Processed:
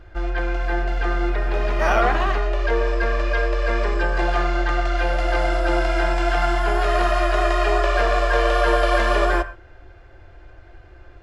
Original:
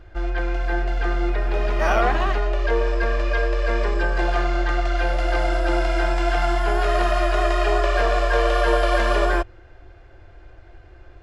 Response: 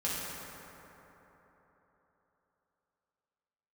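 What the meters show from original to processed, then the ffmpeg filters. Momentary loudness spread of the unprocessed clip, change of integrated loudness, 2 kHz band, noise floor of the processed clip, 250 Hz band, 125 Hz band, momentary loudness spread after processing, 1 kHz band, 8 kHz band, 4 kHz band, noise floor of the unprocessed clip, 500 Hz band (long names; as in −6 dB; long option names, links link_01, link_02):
5 LU, +1.0 dB, +1.5 dB, −45 dBFS, +0.5 dB, 0.0 dB, 6 LU, +1.5 dB, can't be measured, +1.0 dB, −46 dBFS, +0.5 dB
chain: -filter_complex "[0:a]asplit=2[link_01][link_02];[link_02]equalizer=frequency=1400:width=0.59:gain=11[link_03];[1:a]atrim=start_sample=2205,atrim=end_sample=6174[link_04];[link_03][link_04]afir=irnorm=-1:irlink=0,volume=-21.5dB[link_05];[link_01][link_05]amix=inputs=2:normalize=0"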